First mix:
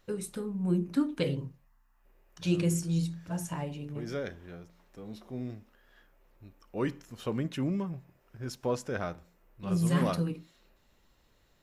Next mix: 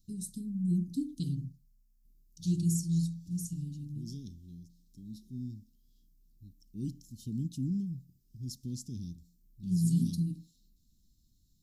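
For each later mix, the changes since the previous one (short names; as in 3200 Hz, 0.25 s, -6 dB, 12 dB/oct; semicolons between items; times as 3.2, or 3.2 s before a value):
master: add inverse Chebyshev band-stop 530–2200 Hz, stop band 50 dB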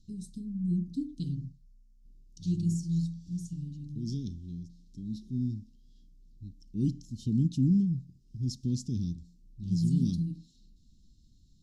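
second voice +8.5 dB; master: add air absorption 92 m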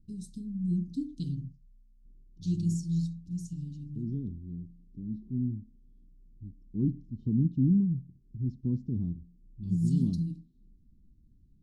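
second voice: add synth low-pass 830 Hz, resonance Q 7.1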